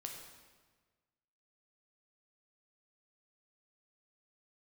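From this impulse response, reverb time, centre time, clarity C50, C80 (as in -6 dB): 1.4 s, 48 ms, 3.5 dB, 5.5 dB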